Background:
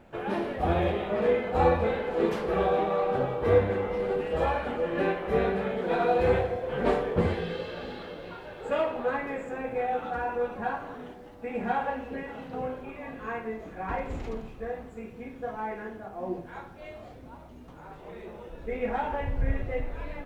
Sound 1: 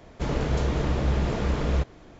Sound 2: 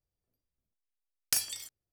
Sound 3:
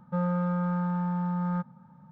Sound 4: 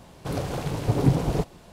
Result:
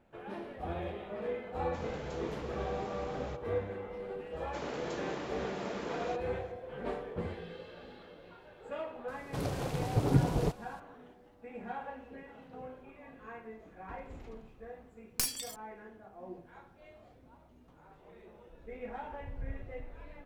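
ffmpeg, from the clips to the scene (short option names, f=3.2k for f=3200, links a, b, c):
-filter_complex "[1:a]asplit=2[a][b];[0:a]volume=-12.5dB[c];[a]highpass=f=160:p=1[d];[b]highpass=280[e];[2:a]aeval=exprs='clip(val(0),-1,0.0266)':c=same[f];[d]atrim=end=2.19,asetpts=PTS-STARTPTS,volume=-13.5dB,afade=t=in:d=0.004:c=hsin,afade=t=out:st=2.186:d=0.004:c=hsin,adelay=1530[g];[e]atrim=end=2.19,asetpts=PTS-STARTPTS,volume=-8.5dB,afade=t=in:d=0.004:c=hsin,afade=t=out:st=2.186:d=0.004:c=hsin,adelay=190953S[h];[4:a]atrim=end=1.72,asetpts=PTS-STARTPTS,volume=-6dB,afade=t=in:d=0.004:c=hsin,afade=t=out:st=1.716:d=0.004:c=hsin,adelay=9080[i];[f]atrim=end=1.92,asetpts=PTS-STARTPTS,volume=-1dB,afade=t=in:d=0.004:c=hsin,afade=t=out:st=1.916:d=0.004:c=hsin,adelay=13870[j];[c][g][h][i][j]amix=inputs=5:normalize=0"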